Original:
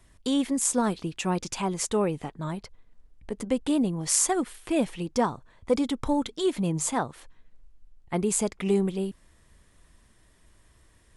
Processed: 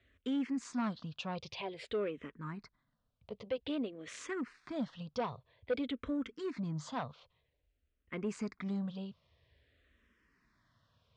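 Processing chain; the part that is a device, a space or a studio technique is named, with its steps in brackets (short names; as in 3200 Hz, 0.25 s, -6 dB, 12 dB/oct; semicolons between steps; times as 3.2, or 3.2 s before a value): barber-pole phaser into a guitar amplifier (endless phaser -0.51 Hz; soft clip -21.5 dBFS, distortion -16 dB; speaker cabinet 85–4400 Hz, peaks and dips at 180 Hz -6 dB, 340 Hz -8 dB, 840 Hz -9 dB); gain -3.5 dB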